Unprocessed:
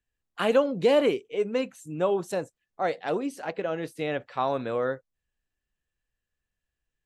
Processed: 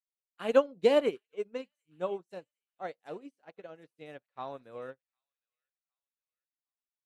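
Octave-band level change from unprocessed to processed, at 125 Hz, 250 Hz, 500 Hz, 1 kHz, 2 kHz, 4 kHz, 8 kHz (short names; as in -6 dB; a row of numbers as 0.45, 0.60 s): -15.0 dB, -8.5 dB, -5.5 dB, -9.5 dB, -9.0 dB, -7.0 dB, under -10 dB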